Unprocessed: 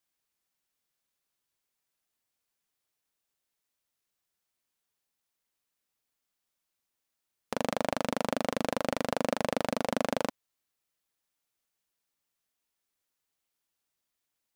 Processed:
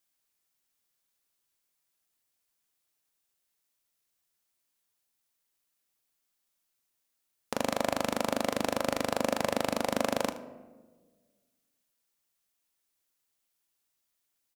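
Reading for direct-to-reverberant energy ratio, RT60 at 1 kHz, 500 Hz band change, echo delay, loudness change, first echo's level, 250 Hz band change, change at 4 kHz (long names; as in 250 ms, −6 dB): 10.5 dB, 1.2 s, +0.5 dB, 77 ms, +1.0 dB, −16.0 dB, 0.0 dB, +2.0 dB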